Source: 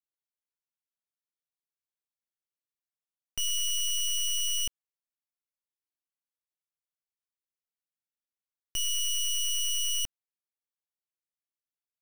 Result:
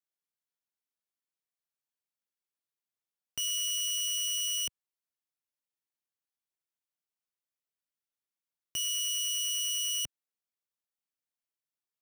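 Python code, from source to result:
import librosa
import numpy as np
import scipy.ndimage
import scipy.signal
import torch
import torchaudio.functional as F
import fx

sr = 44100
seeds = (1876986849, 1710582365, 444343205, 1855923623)

y = scipy.signal.sosfilt(scipy.signal.butter(2, 97.0, 'highpass', fs=sr, output='sos'), x)
y = y * 10.0 ** (-1.5 / 20.0)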